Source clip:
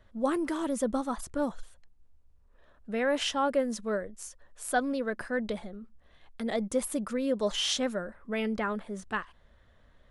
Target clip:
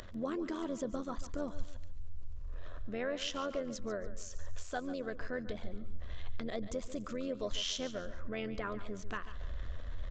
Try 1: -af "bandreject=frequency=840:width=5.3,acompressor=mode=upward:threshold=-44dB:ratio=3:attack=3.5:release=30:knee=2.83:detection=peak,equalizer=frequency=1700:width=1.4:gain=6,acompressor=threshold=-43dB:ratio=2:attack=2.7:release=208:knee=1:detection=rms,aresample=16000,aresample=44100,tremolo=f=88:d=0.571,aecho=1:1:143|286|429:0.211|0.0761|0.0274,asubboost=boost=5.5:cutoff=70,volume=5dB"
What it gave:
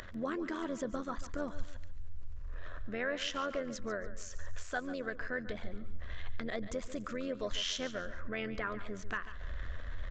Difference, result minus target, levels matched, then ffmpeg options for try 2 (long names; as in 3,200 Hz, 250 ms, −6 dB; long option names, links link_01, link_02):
2,000 Hz band +5.0 dB
-af "bandreject=frequency=840:width=5.3,acompressor=mode=upward:threshold=-44dB:ratio=3:attack=3.5:release=30:knee=2.83:detection=peak,equalizer=frequency=1700:width=1.4:gain=-2.5,acompressor=threshold=-43dB:ratio=2:attack=2.7:release=208:knee=1:detection=rms,aresample=16000,aresample=44100,tremolo=f=88:d=0.571,aecho=1:1:143|286|429:0.211|0.0761|0.0274,asubboost=boost=5.5:cutoff=70,volume=5dB"